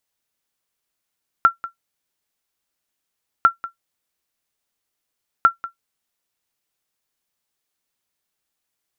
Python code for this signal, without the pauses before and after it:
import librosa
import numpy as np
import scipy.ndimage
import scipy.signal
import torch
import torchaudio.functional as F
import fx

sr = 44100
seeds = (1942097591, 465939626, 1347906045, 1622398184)

y = fx.sonar_ping(sr, hz=1360.0, decay_s=0.12, every_s=2.0, pings=3, echo_s=0.19, echo_db=-17.0, level_db=-3.0)